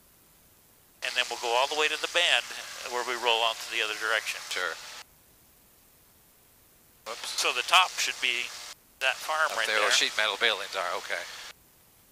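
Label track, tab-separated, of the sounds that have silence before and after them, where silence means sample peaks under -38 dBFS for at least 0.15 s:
1.020000	5.020000	sound
7.060000	8.730000	sound
9.010000	11.510000	sound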